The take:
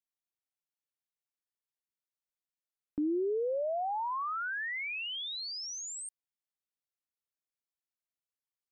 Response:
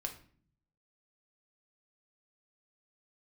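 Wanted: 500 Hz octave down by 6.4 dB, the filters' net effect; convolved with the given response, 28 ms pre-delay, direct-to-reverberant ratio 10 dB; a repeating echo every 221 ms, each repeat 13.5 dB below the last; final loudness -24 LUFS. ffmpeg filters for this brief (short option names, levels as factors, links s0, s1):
-filter_complex "[0:a]equalizer=f=500:t=o:g=-8.5,aecho=1:1:221|442:0.211|0.0444,asplit=2[s0][s1];[1:a]atrim=start_sample=2205,adelay=28[s2];[s1][s2]afir=irnorm=-1:irlink=0,volume=0.335[s3];[s0][s3]amix=inputs=2:normalize=0,volume=3.98"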